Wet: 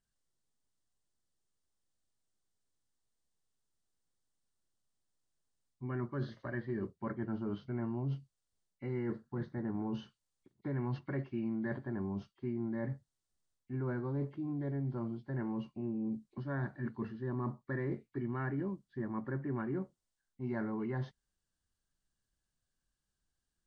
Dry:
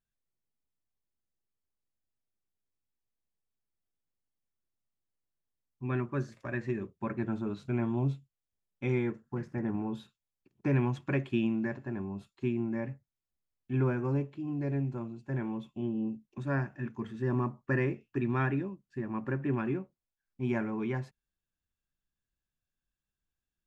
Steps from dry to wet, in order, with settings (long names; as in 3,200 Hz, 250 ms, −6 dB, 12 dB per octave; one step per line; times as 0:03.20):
hearing-aid frequency compression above 1,900 Hz 1.5 to 1
parametric band 2,400 Hz −14 dB 0.21 octaves
reversed playback
downward compressor 5 to 1, threshold −38 dBFS, peak gain reduction 13.5 dB
reversed playback
level +3.5 dB